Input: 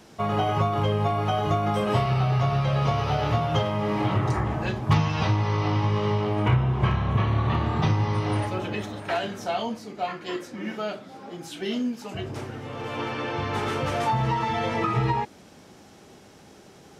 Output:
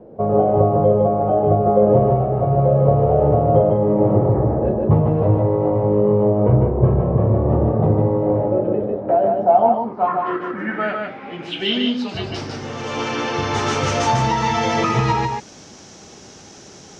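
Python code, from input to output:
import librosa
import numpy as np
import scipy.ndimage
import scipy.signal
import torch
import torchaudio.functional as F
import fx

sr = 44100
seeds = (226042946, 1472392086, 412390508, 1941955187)

p1 = fx.filter_sweep_lowpass(x, sr, from_hz=530.0, to_hz=6200.0, start_s=9.0, end_s=12.69, q=3.7)
p2 = p1 + fx.echo_single(p1, sr, ms=150, db=-3.5, dry=0)
y = p2 * librosa.db_to_amplitude(5.0)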